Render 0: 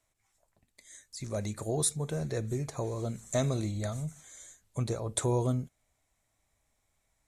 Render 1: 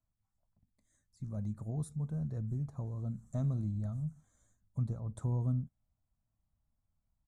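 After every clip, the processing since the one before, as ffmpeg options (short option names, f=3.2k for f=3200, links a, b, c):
-af "firequalizer=gain_entry='entry(210,0);entry(370,-17);entry(790,-13);entry(1300,-13);entry(2100,-28);entry(8600,-23)':delay=0.05:min_phase=1,volume=-1dB"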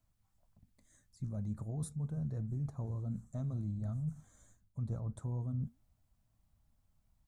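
-af "areverse,acompressor=threshold=-43dB:ratio=6,areverse,flanger=delay=0.4:depth=6.3:regen=-83:speed=1.5:shape=sinusoidal,volume=12dB"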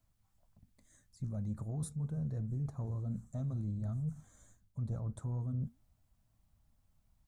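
-af "asoftclip=type=tanh:threshold=-29dB,volume=1.5dB"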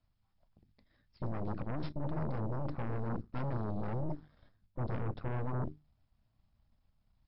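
-af "bandreject=f=50:t=h:w=6,bandreject=f=100:t=h:w=6,bandreject=f=150:t=h:w=6,aeval=exprs='0.0335*(cos(1*acos(clip(val(0)/0.0335,-1,1)))-cos(1*PI/2))+0.0133*(cos(8*acos(clip(val(0)/0.0335,-1,1)))-cos(8*PI/2))':c=same" -ar 12000 -c:a libmp3lame -b:a 48k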